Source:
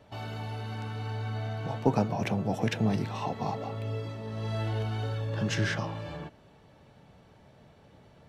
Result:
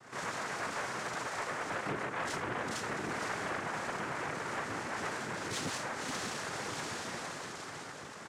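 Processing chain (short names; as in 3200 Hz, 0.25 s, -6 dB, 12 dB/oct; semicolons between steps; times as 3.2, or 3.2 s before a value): HPF 300 Hz; comb 2.9 ms, depth 77%; diffused feedback echo 0.59 s, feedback 47%, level -5 dB; compressor 6:1, threshold -40 dBFS, peak gain reduction 19 dB; reverb RT60 0.35 s, pre-delay 24 ms, DRR -6.5 dB; noise vocoder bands 3; soft clip -28.5 dBFS, distortion -18 dB; Doppler distortion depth 0.23 ms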